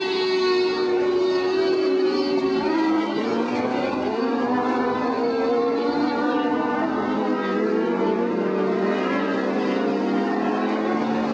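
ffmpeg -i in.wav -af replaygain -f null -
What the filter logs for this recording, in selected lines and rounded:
track_gain = +4.9 dB
track_peak = 0.211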